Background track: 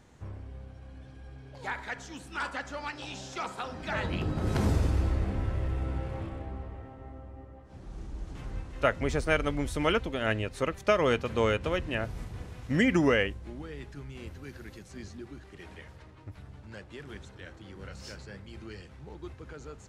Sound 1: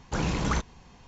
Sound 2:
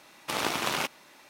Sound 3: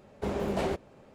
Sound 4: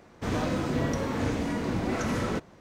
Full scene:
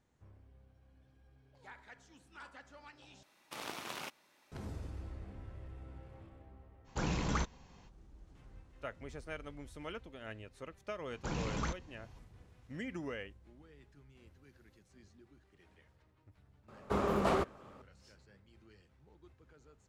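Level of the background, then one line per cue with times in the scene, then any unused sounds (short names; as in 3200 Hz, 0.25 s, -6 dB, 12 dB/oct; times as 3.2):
background track -18 dB
3.23 replace with 2 -14.5 dB
6.84 add 1 -7 dB, fades 0.05 s
11.12 add 1 -10 dB
16.68 add 3 -2 dB + bell 1200 Hz +13.5 dB 0.42 oct
not used: 4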